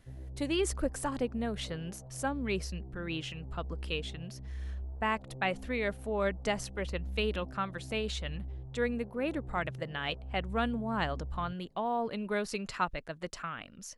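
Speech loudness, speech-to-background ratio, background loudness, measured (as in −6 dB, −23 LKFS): −35.5 LKFS, 9.0 dB, −44.5 LKFS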